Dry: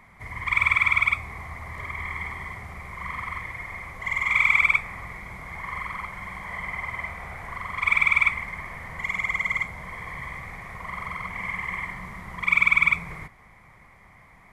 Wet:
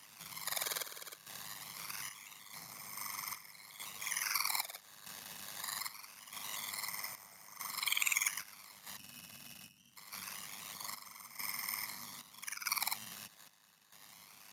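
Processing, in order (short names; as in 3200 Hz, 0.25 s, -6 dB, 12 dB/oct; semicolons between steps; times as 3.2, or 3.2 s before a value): spectral gain 8.97–9.97, 280–6600 Hz -21 dB; ten-band EQ 125 Hz +11 dB, 250 Hz +4 dB, 2000 Hz -10 dB; decimation with a swept rate 11×, swing 100% 0.24 Hz; compressor 2:1, threshold -40 dBFS, peak gain reduction 10.5 dB; ring modulator 51 Hz; differentiator; chopper 0.79 Hz, depth 65%, duty 65%; gain +14.5 dB; Speex 36 kbps 32000 Hz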